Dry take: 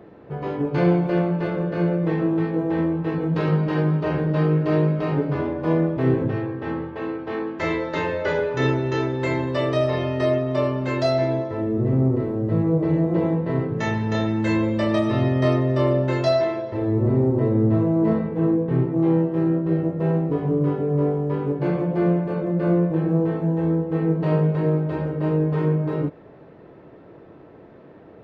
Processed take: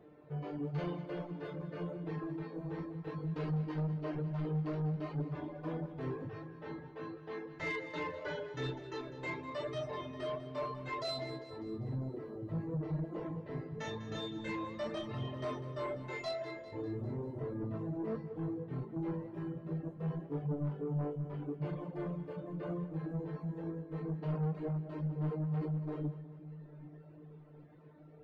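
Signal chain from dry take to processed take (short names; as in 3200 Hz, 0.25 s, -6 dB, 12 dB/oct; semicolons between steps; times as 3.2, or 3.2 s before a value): resonator 150 Hz, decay 0.46 s, harmonics all, mix 90%; flange 0.92 Hz, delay 0.2 ms, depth 6.6 ms, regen +85%; soft clip -33.5 dBFS, distortion -11 dB; reverb removal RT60 1.4 s; split-band echo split 300 Hz, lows 0.779 s, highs 0.199 s, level -13.5 dB; gain +4.5 dB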